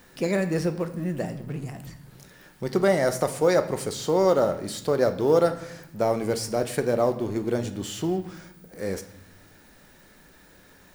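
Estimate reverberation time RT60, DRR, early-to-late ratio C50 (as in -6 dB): 0.80 s, 8.0 dB, 12.5 dB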